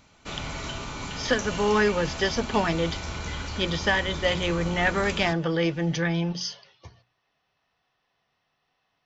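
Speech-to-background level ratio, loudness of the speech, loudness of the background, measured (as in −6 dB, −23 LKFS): 8.0 dB, −26.0 LKFS, −34.0 LKFS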